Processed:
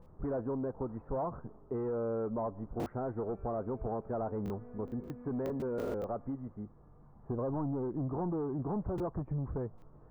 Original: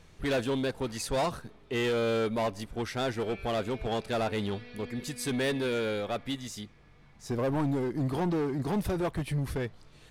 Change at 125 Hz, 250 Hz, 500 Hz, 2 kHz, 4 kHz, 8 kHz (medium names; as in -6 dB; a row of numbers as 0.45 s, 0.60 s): -4.5 dB, -4.5 dB, -5.0 dB, -20.5 dB, under -25 dB, under -25 dB